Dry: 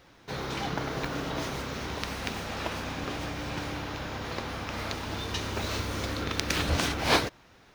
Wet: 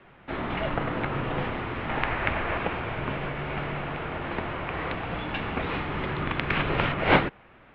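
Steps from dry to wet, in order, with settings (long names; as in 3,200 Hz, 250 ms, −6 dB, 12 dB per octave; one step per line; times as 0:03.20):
0:01.89–0:02.58: graphic EQ with 10 bands 125 Hz +10 dB, 1,000 Hz +4 dB, 2,000 Hz +5 dB
single-sideband voice off tune −150 Hz 160–3,000 Hz
level +5 dB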